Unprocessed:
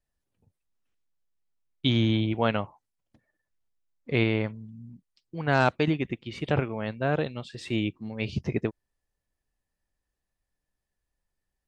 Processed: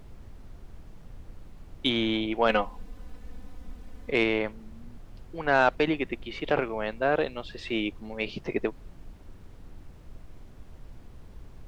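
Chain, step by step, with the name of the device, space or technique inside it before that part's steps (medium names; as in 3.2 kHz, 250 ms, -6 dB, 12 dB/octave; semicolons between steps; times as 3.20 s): aircraft cabin announcement (band-pass 400–4100 Hz; saturation -13.5 dBFS, distortion -19 dB; brown noise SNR 14 dB); bass shelf 350 Hz +3.5 dB; 2.49–4.10 s: comb 4 ms, depth 97%; trim +3.5 dB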